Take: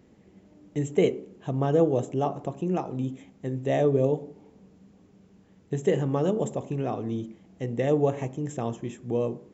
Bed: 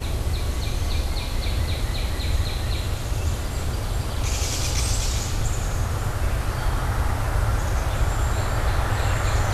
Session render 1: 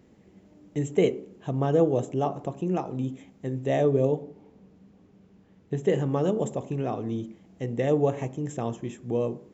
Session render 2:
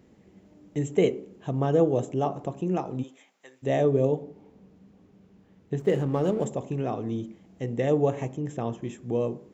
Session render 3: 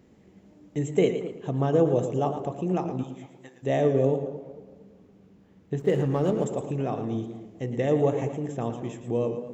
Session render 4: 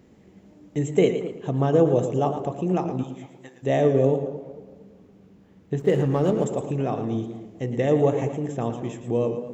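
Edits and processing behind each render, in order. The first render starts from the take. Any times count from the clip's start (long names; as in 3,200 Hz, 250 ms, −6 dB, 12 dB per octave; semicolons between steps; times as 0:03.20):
0:04.15–0:05.90: high-frequency loss of the air 84 metres
0:03.02–0:03.62: high-pass filter 570 Hz → 1,500 Hz; 0:05.79–0:06.46: slack as between gear wheels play −40 dBFS; 0:08.37–0:08.82: high-frequency loss of the air 82 metres
tape delay 228 ms, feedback 45%, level −12 dB, low-pass 1,100 Hz; feedback echo with a swinging delay time 113 ms, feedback 32%, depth 77 cents, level −10 dB
level +3 dB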